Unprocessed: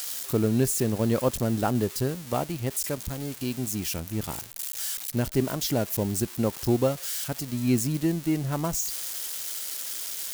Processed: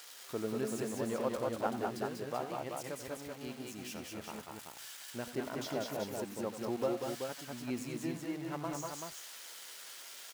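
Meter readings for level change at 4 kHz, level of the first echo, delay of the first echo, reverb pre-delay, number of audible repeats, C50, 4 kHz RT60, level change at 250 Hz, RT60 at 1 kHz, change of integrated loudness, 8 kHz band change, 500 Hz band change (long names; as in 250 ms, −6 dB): −10.5 dB, −11.5 dB, 88 ms, no reverb audible, 3, no reverb audible, no reverb audible, −12.5 dB, no reverb audible, −12.0 dB, −15.5 dB, −8.0 dB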